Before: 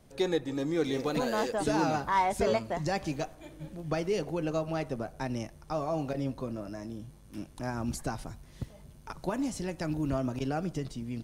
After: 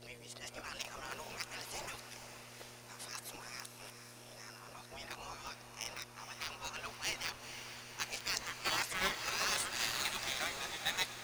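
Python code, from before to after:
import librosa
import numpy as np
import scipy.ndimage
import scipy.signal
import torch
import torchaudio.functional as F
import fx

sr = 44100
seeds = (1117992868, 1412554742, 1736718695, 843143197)

p1 = x[::-1].copy()
p2 = fx.spec_gate(p1, sr, threshold_db=-20, keep='weak')
p3 = fx.low_shelf(p2, sr, hz=450.0, db=-7.5)
p4 = fx.quant_dither(p3, sr, seeds[0], bits=6, dither='none')
p5 = p3 + F.gain(torch.from_numpy(p4), -6.0).numpy()
p6 = fx.dmg_buzz(p5, sr, base_hz=120.0, harmonics=5, level_db=-62.0, tilt_db=-4, odd_only=False)
p7 = p6 + fx.echo_diffused(p6, sr, ms=472, feedback_pct=65, wet_db=-9.0, dry=0)
y = F.gain(torch.from_numpy(p7), 3.5).numpy()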